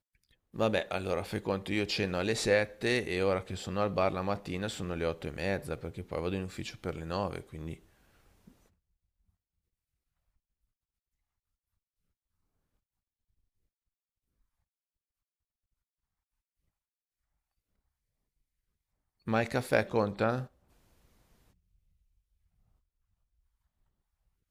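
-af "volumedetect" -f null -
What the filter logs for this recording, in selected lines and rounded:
mean_volume: -36.8 dB
max_volume: -12.5 dB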